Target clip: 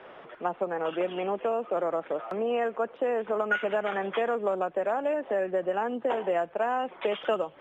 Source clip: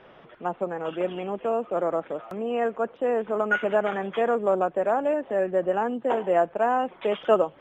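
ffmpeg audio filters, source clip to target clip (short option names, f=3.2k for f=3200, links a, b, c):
-filter_complex "[0:a]bass=f=250:g=-11,treble=f=4k:g=-2,acrossover=split=180|2300[a][b][c];[b]acompressor=threshold=-30dB:ratio=6[d];[c]aemphasis=mode=reproduction:type=50fm[e];[a][d][e]amix=inputs=3:normalize=0,volume=4.5dB"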